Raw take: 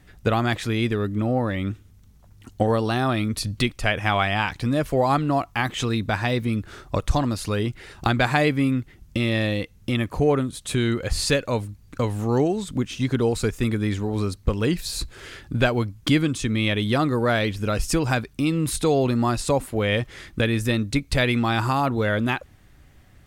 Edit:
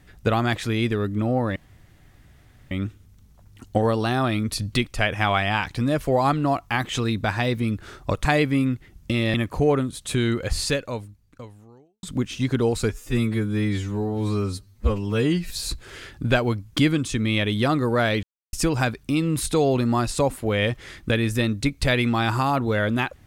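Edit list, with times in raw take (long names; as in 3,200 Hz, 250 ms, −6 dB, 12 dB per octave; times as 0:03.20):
0:01.56: splice in room tone 1.15 s
0:07.10–0:08.31: remove
0:09.40–0:09.94: remove
0:11.10–0:12.63: fade out quadratic
0:13.50–0:14.80: time-stretch 2×
0:17.53–0:17.83: silence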